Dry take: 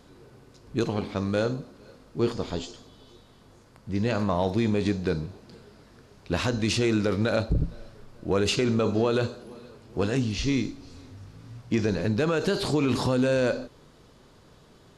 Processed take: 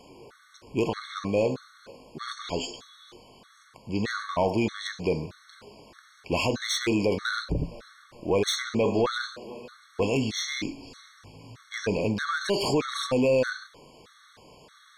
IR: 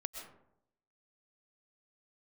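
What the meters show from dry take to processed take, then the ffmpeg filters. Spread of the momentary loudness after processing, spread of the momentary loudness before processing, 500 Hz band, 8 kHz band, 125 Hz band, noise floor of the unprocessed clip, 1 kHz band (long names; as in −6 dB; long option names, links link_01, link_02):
15 LU, 19 LU, −0.5 dB, +2.5 dB, −5.5 dB, −55 dBFS, +1.5 dB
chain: -filter_complex "[0:a]asplit=2[link_01][link_02];[link_02]highpass=frequency=720:poles=1,volume=14dB,asoftclip=type=tanh:threshold=-14dB[link_03];[link_01][link_03]amix=inputs=2:normalize=0,lowpass=frequency=7400:poles=1,volume=-6dB,afftfilt=real='re*gt(sin(2*PI*1.6*pts/sr)*(1-2*mod(floor(b*sr/1024/1100),2)),0)':imag='im*gt(sin(2*PI*1.6*pts/sr)*(1-2*mod(floor(b*sr/1024/1100),2)),0)':win_size=1024:overlap=0.75"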